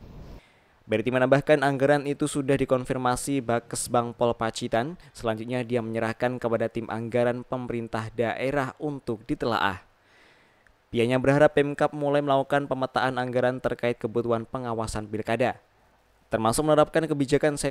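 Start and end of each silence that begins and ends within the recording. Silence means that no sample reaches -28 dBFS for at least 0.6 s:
9.74–10.94
15.51–16.32

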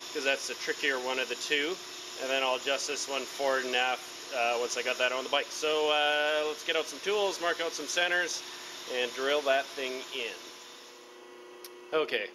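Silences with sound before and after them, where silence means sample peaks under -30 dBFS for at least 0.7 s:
10.32–11.65

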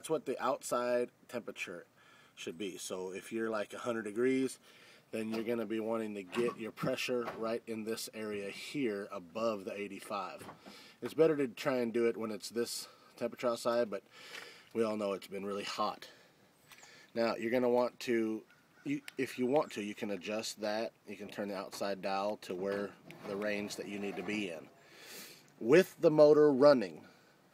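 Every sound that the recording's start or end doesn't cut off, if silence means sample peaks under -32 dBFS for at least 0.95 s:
17.17–24.52

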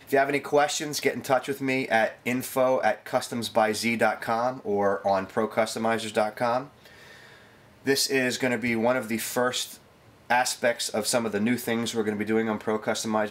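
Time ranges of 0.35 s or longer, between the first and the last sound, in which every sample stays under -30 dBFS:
6.62–7.87
9.64–10.3

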